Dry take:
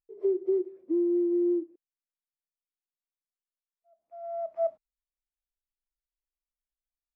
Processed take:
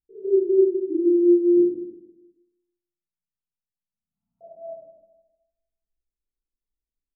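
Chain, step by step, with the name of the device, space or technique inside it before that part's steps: 1.57–4.41 s: inverse Chebyshev band-stop 320–700 Hz, stop band 40 dB; next room (low-pass 400 Hz 24 dB/octave; reverberation RT60 0.85 s, pre-delay 19 ms, DRR -9 dB); feedback delay 156 ms, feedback 38%, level -11 dB

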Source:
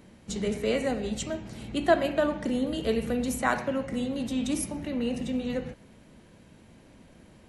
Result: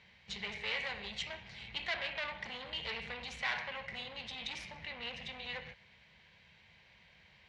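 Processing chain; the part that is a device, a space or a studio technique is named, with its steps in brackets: scooped metal amplifier (valve stage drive 30 dB, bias 0.55; cabinet simulation 97–4200 Hz, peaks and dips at 110 Hz -6 dB, 260 Hz -6 dB, 610 Hz -4 dB, 1.3 kHz -7 dB, 2.1 kHz +6 dB; amplifier tone stack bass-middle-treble 10-0-10); trim +7 dB

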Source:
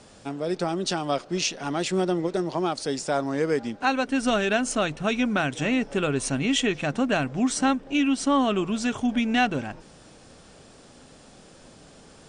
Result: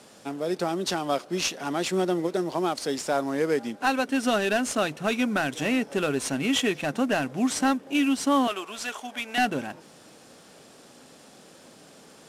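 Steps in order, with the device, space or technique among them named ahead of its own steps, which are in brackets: 8.47–9.38 s: high-pass 660 Hz 12 dB/octave; early wireless headset (high-pass 180 Hz 12 dB/octave; CVSD coder 64 kbps)

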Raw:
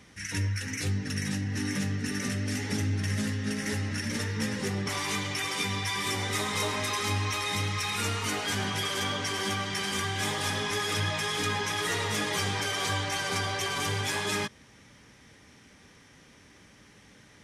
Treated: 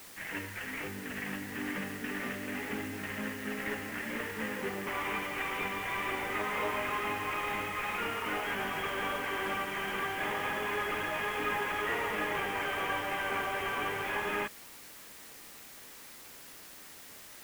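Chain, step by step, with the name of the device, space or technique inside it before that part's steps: army field radio (band-pass 320–3100 Hz; CVSD coder 16 kbps; white noise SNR 15 dB)

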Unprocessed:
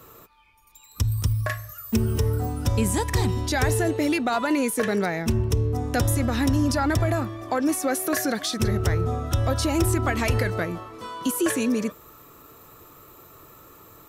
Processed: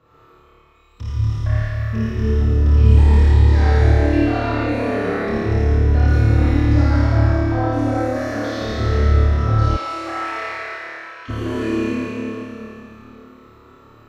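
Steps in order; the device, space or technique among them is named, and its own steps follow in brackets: tunnel (flutter echo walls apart 4.7 m, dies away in 1.2 s; reverberation RT60 3.0 s, pre-delay 44 ms, DRR -7.5 dB); 9.76–11.28 s: high-pass 610 Hz -> 1.3 kHz 12 dB/octave; distance through air 220 m; trim -9 dB

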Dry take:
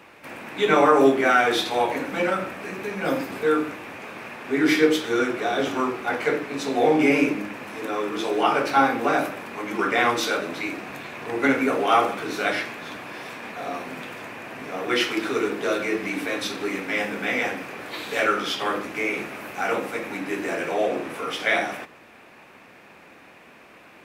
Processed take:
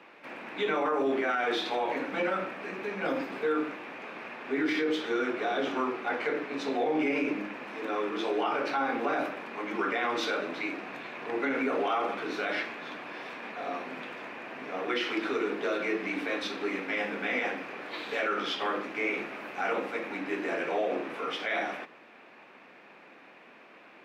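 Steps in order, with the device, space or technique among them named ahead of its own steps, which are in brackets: DJ mixer with the lows and highs turned down (three-band isolator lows -22 dB, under 170 Hz, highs -17 dB, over 4.9 kHz; peak limiter -16.5 dBFS, peak gain reduction 11 dB); trim -4 dB

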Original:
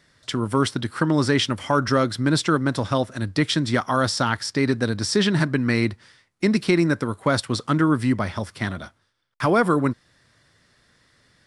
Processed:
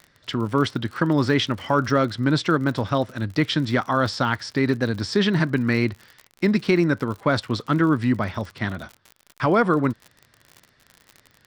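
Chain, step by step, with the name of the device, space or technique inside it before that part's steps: lo-fi chain (low-pass 4.4 kHz 12 dB/octave; wow and flutter; crackle 58 per s -32 dBFS)

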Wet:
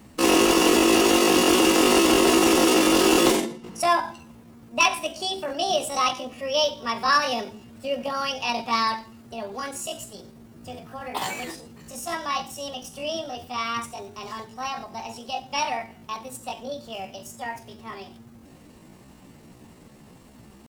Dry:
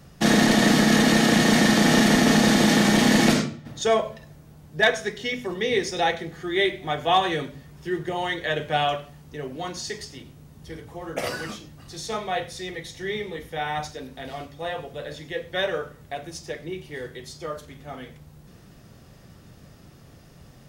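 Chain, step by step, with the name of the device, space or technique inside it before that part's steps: chipmunk voice (pitch shift +7.5 st)

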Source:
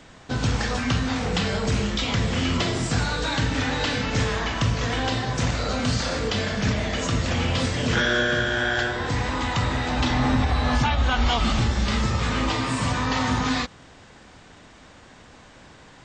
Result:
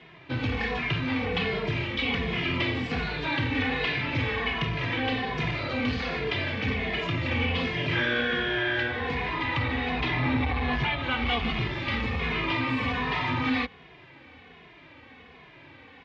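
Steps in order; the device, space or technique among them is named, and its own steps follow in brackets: barber-pole flanger into a guitar amplifier (endless flanger 2.4 ms -1.3 Hz; saturation -19 dBFS, distortion -18 dB; cabinet simulation 91–3400 Hz, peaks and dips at 110 Hz -4 dB, 200 Hz -8 dB, 600 Hz -6 dB, 860 Hz -3 dB, 1.4 kHz -7 dB, 2.3 kHz +7 dB); trim +3 dB

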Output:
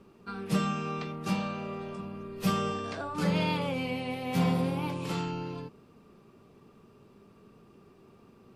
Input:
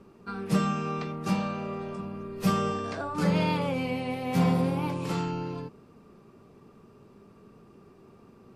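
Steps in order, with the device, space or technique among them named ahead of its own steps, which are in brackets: presence and air boost (peaking EQ 3.2 kHz +4.5 dB 0.94 oct; treble shelf 11 kHz +4.5 dB); trim -3 dB

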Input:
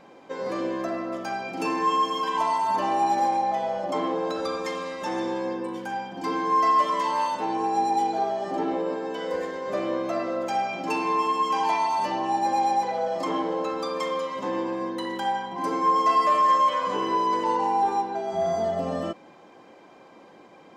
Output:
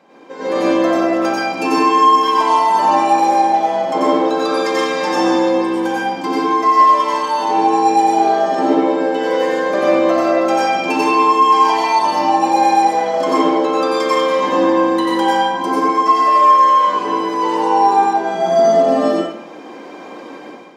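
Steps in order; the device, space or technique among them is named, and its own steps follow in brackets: far laptop microphone (reverberation RT60 0.60 s, pre-delay 86 ms, DRR -5 dB; high-pass 170 Hz 24 dB/octave; level rider); trim -1 dB

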